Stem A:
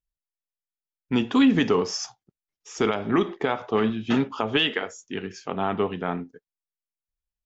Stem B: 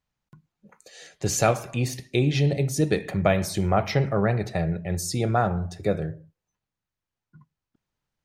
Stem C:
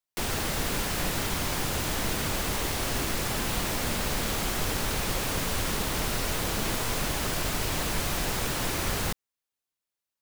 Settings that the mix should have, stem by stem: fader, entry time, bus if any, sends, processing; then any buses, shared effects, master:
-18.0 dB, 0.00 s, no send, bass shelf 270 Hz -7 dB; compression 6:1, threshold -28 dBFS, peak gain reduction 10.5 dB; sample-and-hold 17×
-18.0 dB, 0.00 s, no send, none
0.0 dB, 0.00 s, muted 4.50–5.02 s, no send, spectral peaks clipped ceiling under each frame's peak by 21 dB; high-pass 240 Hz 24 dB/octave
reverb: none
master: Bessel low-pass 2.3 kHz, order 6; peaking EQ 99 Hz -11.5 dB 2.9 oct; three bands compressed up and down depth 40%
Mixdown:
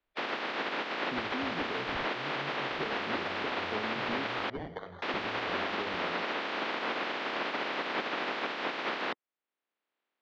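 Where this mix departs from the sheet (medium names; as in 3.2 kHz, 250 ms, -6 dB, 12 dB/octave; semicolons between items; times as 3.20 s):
stem A -18.0 dB -> -8.0 dB; stem B -18.0 dB -> -27.0 dB; master: missing peaking EQ 99 Hz -11.5 dB 2.9 oct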